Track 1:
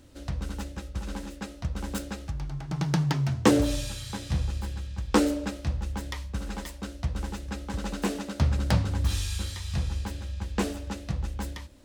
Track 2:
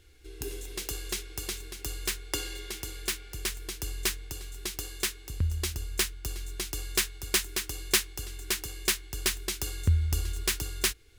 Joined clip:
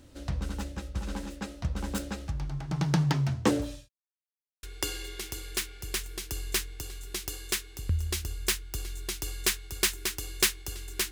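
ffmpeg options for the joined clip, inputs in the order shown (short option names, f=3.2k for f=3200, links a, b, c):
-filter_complex "[0:a]apad=whole_dur=11.11,atrim=end=11.11,asplit=2[a][b];[a]atrim=end=3.89,asetpts=PTS-STARTPTS,afade=t=out:st=3.16:d=0.73[c];[b]atrim=start=3.89:end=4.63,asetpts=PTS-STARTPTS,volume=0[d];[1:a]atrim=start=2.14:end=8.62,asetpts=PTS-STARTPTS,afade=t=in:d=0.004:c=hsin[e];[c][d][e]concat=n=3:v=0:a=1"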